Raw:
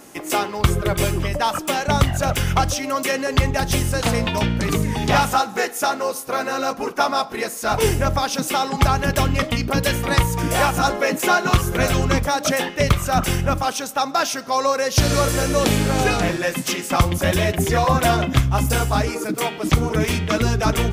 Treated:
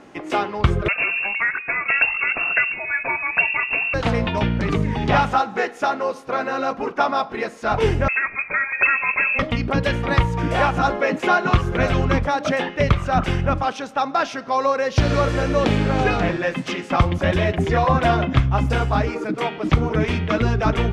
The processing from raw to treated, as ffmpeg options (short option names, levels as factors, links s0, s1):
-filter_complex "[0:a]asettb=1/sr,asplit=3[s0][s1][s2];[s0]atrim=end=0.884[s3];[s1]atrim=start=0.88:end=3.94,asetpts=PTS-STARTPTS,afade=t=in:d=0.004:c=qsin,afade=t=out:st=3.056:d=0.004:c=qsin,lowpass=f=2400:t=q:w=0.5098,lowpass=f=2400:t=q:w=0.6013,lowpass=f=2400:t=q:w=0.9,lowpass=f=2400:t=q:w=2.563,afreqshift=-2800[s4];[s2]atrim=start=3.936[s5];[s3][s4]acrossfade=d=0.004:c1=hsin:c2=qsin[s6];[s6][s5]acrossfade=d=0.004:c1=qsin:c2=hsin,asettb=1/sr,asplit=3[s7][s8][s9];[s7]atrim=end=8.084[s10];[s8]atrim=start=8.08:end=9.39,asetpts=PTS-STARTPTS,afade=t=in:d=0.004:c=qsin,afade=t=out:st=1.306:d=0.004:c=qsin,lowpass=f=2300:t=q:w=0.5098,lowpass=f=2300:t=q:w=0.6013,lowpass=f=2300:t=q:w=0.9,lowpass=f=2300:t=q:w=2.563,afreqshift=-2700[s11];[s9]atrim=start=9.386[s12];[s10][s11]acrossfade=d=0.004:c1=hsin:c2=qsin[s13];[s13][s12]acrossfade=d=0.004:c1=qsin:c2=hsin,lowpass=2900"